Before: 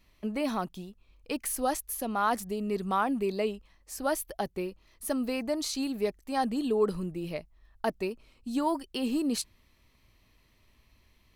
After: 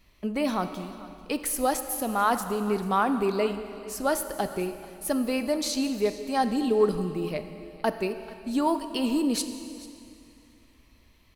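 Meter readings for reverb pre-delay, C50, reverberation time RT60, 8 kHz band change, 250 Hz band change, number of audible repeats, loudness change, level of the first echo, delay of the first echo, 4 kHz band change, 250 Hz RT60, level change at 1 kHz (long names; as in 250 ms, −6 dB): 8 ms, 9.5 dB, 2.6 s, +4.0 dB, +4.0 dB, 1, +4.0 dB, −19.0 dB, 440 ms, +4.0 dB, 2.6 s, +4.0 dB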